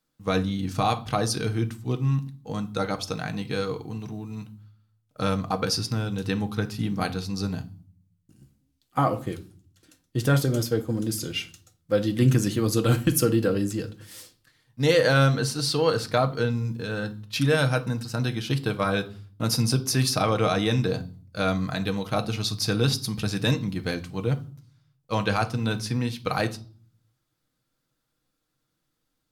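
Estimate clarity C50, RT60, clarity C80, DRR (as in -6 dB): 17.0 dB, 0.45 s, 23.0 dB, 6.5 dB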